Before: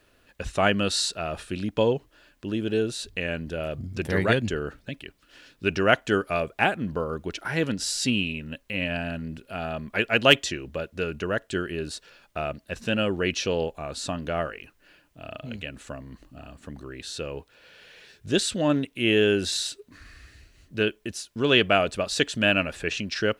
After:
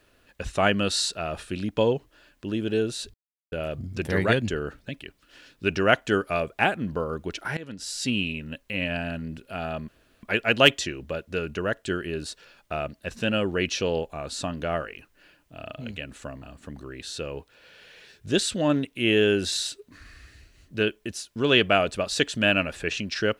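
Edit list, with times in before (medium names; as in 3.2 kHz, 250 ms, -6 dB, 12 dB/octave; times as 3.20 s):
3.14–3.52 s: mute
7.57–8.26 s: fade in, from -19 dB
9.88 s: insert room tone 0.35 s
16.07–16.42 s: delete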